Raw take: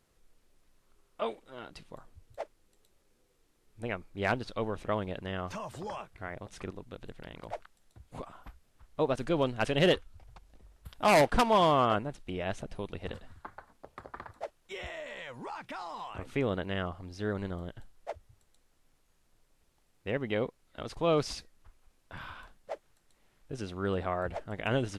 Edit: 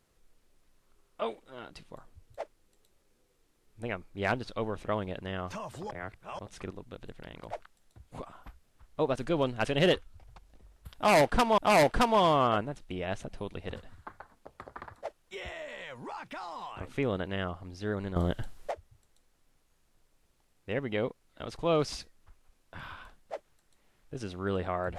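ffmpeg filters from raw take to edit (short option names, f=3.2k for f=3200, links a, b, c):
-filter_complex "[0:a]asplit=6[a][b][c][d][e][f];[a]atrim=end=5.912[g];[b]atrim=start=5.908:end=6.392,asetpts=PTS-STARTPTS,areverse[h];[c]atrim=start=6.388:end=11.582[i];[d]atrim=start=10.958:end=17.542[j];[e]atrim=start=17.538:end=18.092,asetpts=PTS-STARTPTS,volume=11.5dB[k];[f]atrim=start=18.088[l];[g][h]acrossfade=d=0.004:c1=hsin:c2=hsin[m];[m][i]acrossfade=d=0.004:c1=hsin:c2=hsin[n];[n][j]acrossfade=d=0.004:c1=hsin:c2=hsin[o];[o][k]acrossfade=d=0.004:c1=hsin:c2=hsin[p];[p][l]acrossfade=d=0.004:c1=hsin:c2=hsin"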